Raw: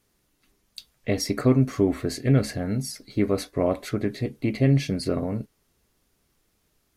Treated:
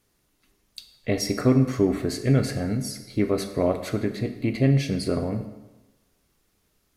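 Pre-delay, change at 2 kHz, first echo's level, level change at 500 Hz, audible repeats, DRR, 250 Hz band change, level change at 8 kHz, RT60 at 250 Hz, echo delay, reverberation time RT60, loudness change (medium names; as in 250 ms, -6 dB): 27 ms, +0.5 dB, no echo, +0.5 dB, no echo, 8.5 dB, +0.5 dB, +0.5 dB, 1.1 s, no echo, 1.1 s, +0.5 dB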